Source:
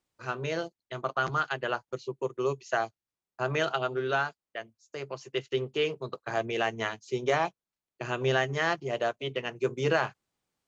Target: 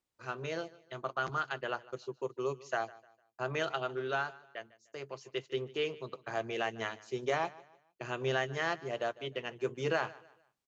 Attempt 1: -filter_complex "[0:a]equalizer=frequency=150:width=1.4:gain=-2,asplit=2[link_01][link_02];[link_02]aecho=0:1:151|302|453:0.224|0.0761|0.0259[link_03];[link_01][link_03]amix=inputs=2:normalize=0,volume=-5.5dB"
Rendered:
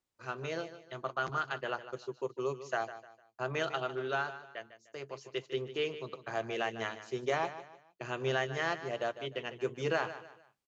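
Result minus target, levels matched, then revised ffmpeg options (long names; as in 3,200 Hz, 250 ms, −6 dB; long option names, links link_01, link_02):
echo-to-direct +7.5 dB
-filter_complex "[0:a]equalizer=frequency=150:width=1.4:gain=-2,asplit=2[link_01][link_02];[link_02]aecho=0:1:151|302|453:0.0944|0.0321|0.0109[link_03];[link_01][link_03]amix=inputs=2:normalize=0,volume=-5.5dB"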